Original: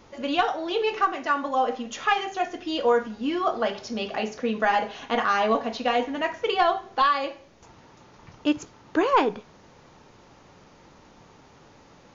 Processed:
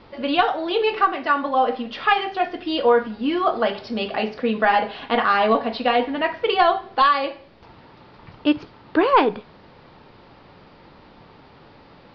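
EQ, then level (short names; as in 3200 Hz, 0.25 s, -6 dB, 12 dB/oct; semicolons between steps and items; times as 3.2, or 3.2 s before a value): steep low-pass 4900 Hz 72 dB/oct; +4.5 dB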